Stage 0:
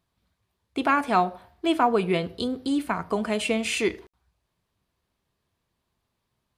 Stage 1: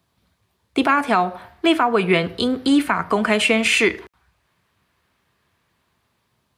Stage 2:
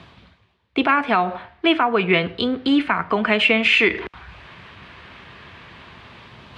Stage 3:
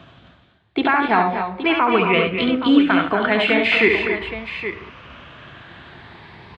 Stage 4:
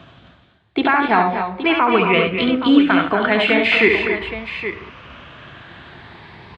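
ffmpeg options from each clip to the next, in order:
ffmpeg -i in.wav -filter_complex "[0:a]highpass=67,acrossover=split=320|1400|2100[link_01][link_02][link_03][link_04];[link_03]dynaudnorm=framelen=490:gausssize=5:maxgain=12dB[link_05];[link_01][link_02][link_05][link_04]amix=inputs=4:normalize=0,alimiter=limit=-15dB:level=0:latency=1:release=274,volume=9dB" out.wav
ffmpeg -i in.wav -af "areverse,acompressor=mode=upward:threshold=-21dB:ratio=2.5,areverse,lowpass=frequency=3000:width_type=q:width=1.5,volume=-1.5dB" out.wav
ffmpeg -i in.wav -af "afftfilt=real='re*pow(10,7/40*sin(2*PI*(0.86*log(max(b,1)*sr/1024/100)/log(2)-(0.38)*(pts-256)/sr)))':imag='im*pow(10,7/40*sin(2*PI*(0.86*log(max(b,1)*sr/1024/100)/log(2)-(0.38)*(pts-256)/sr)))':win_size=1024:overlap=0.75,aemphasis=mode=reproduction:type=50kf,aecho=1:1:70|222|243|269|821:0.531|0.141|0.376|0.316|0.282" out.wav
ffmpeg -i in.wav -af "aresample=22050,aresample=44100,volume=1.5dB" out.wav

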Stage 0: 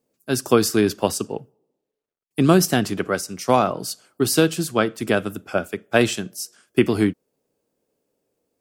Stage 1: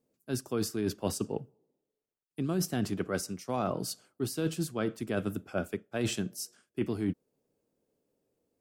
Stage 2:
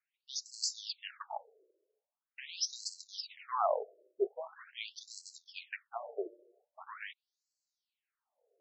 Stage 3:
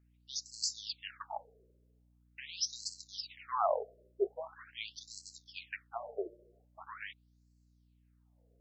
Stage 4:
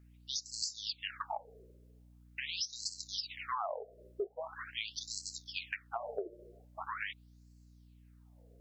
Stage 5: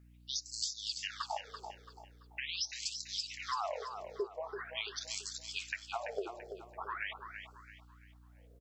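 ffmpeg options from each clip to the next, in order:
ffmpeg -i in.wav -af "lowshelf=frequency=450:gain=7,areverse,acompressor=threshold=-19dB:ratio=12,areverse,volume=-8dB" out.wav
ffmpeg -i in.wav -af "acrusher=bits=4:mode=log:mix=0:aa=0.000001,afftfilt=real='re*between(b*sr/1024,450*pow(5800/450,0.5+0.5*sin(2*PI*0.43*pts/sr))/1.41,450*pow(5800/450,0.5+0.5*sin(2*PI*0.43*pts/sr))*1.41)':imag='im*between(b*sr/1024,450*pow(5800/450,0.5+0.5*sin(2*PI*0.43*pts/sr))/1.41,450*pow(5800/450,0.5+0.5*sin(2*PI*0.43*pts/sr))*1.41)':win_size=1024:overlap=0.75,volume=6dB" out.wav
ffmpeg -i in.wav -af "aeval=exprs='val(0)+0.000447*(sin(2*PI*60*n/s)+sin(2*PI*2*60*n/s)/2+sin(2*PI*3*60*n/s)/3+sin(2*PI*4*60*n/s)/4+sin(2*PI*5*60*n/s)/5)':channel_layout=same" out.wav
ffmpeg -i in.wav -af "acompressor=threshold=-43dB:ratio=10,volume=8.5dB" out.wav
ffmpeg -i in.wav -af "aecho=1:1:336|672|1008|1344:0.398|0.143|0.0516|0.0186" out.wav

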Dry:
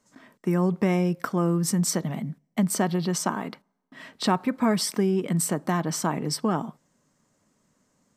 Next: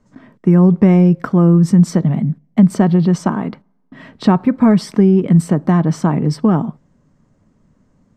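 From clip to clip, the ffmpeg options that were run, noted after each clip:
ffmpeg -i in.wav -af "aemphasis=mode=reproduction:type=riaa,volume=5.5dB" out.wav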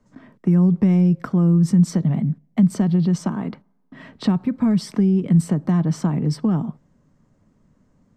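ffmpeg -i in.wav -filter_complex "[0:a]acrossover=split=230|3000[link_01][link_02][link_03];[link_02]acompressor=threshold=-23dB:ratio=6[link_04];[link_01][link_04][link_03]amix=inputs=3:normalize=0,volume=-3.5dB" out.wav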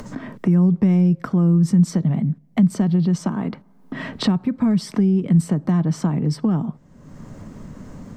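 ffmpeg -i in.wav -af "acompressor=mode=upward:threshold=-18dB:ratio=2.5" out.wav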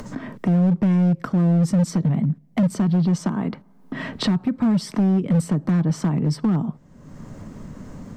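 ffmpeg -i in.wav -af "asoftclip=type=hard:threshold=-14.5dB" out.wav

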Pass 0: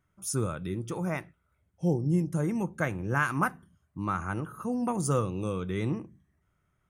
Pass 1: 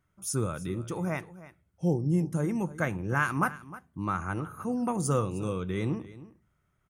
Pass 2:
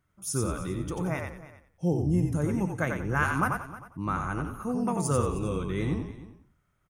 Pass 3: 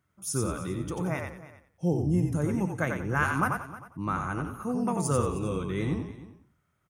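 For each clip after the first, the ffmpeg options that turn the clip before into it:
ffmpeg -i in.wav -af "aecho=1:1:310:0.141" out.wav
ffmpeg -i in.wav -filter_complex "[0:a]asplit=5[link_01][link_02][link_03][link_04][link_05];[link_02]adelay=90,afreqshift=-45,volume=-4.5dB[link_06];[link_03]adelay=180,afreqshift=-90,volume=-15dB[link_07];[link_04]adelay=270,afreqshift=-135,volume=-25.4dB[link_08];[link_05]adelay=360,afreqshift=-180,volume=-35.9dB[link_09];[link_01][link_06][link_07][link_08][link_09]amix=inputs=5:normalize=0" out.wav
ffmpeg -i in.wav -af "highpass=72" out.wav

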